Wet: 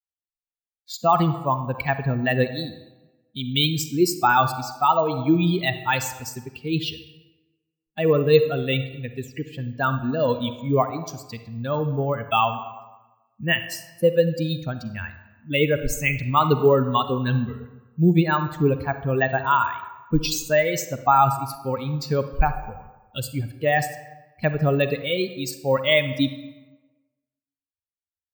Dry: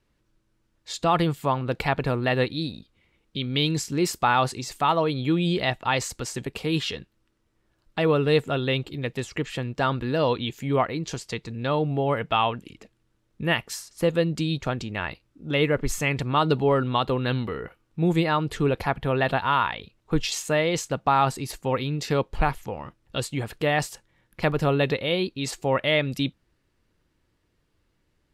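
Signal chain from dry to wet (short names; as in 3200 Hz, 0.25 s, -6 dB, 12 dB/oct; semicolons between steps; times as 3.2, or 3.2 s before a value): per-bin expansion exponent 2; reverb RT60 1.1 s, pre-delay 38 ms, DRR 9.5 dB; careless resampling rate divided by 2×, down filtered, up hold; gain +7.5 dB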